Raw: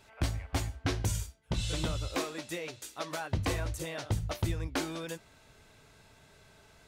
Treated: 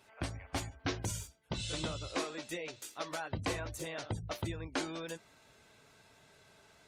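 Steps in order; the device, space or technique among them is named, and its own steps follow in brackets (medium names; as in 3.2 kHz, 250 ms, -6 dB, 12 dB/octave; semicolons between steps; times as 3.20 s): noise-suppressed video call (high-pass 170 Hz 6 dB/octave; spectral gate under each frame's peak -30 dB strong; trim -2 dB; Opus 32 kbps 48 kHz)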